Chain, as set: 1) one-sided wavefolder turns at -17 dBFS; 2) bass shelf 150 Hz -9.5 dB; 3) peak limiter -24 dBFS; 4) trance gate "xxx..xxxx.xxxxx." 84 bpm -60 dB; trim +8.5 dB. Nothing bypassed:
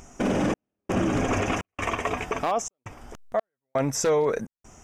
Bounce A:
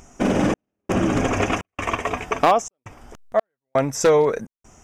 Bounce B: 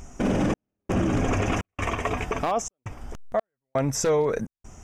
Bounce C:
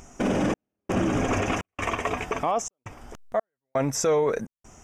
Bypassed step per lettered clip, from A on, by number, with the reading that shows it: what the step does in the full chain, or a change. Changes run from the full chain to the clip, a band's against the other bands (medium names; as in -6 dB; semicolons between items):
3, mean gain reduction 2.5 dB; 2, 125 Hz band +4.0 dB; 1, distortion -19 dB